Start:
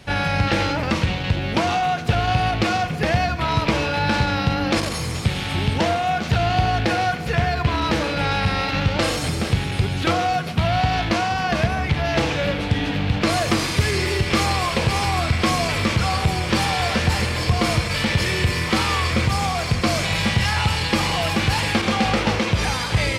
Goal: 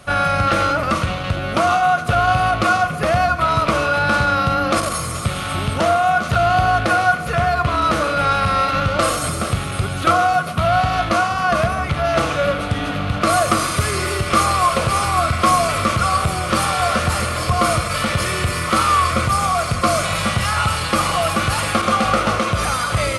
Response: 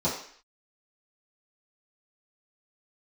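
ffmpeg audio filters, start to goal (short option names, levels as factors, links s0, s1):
-af "superequalizer=8b=2.24:10b=3.98:15b=1.58:16b=3.55,volume=0.891"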